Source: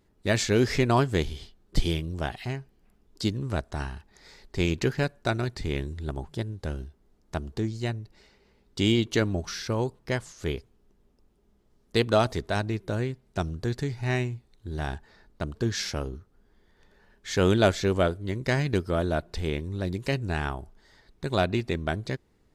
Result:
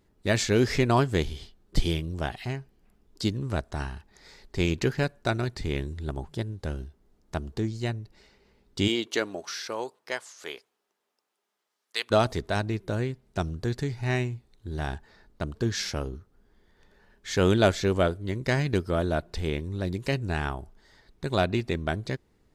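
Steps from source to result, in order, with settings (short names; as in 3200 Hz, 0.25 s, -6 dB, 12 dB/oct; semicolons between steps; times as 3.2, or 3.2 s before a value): 8.87–12.1 HPF 350 Hz -> 1300 Hz 12 dB/oct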